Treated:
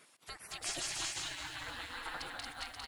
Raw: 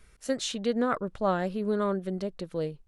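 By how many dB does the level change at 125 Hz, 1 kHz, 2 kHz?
-18.5 dB, -12.0 dB, -1.5 dB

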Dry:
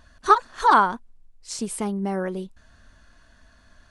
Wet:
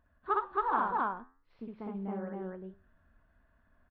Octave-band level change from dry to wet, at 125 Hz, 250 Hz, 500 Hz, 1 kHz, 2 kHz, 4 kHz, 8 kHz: -10.5 dB, -10.5 dB, -10.5 dB, -11.5 dB, -13.0 dB, under -20 dB, under -40 dB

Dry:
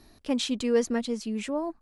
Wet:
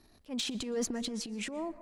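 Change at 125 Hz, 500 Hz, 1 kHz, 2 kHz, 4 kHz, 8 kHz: no reading, -10.5 dB, -8.0 dB, -5.0 dB, -2.5 dB, 0.0 dB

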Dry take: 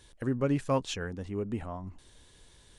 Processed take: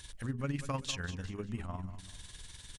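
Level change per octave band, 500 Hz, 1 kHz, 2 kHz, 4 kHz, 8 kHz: -11.5 dB, -6.0 dB, -1.0 dB, +0.5 dB, +1.5 dB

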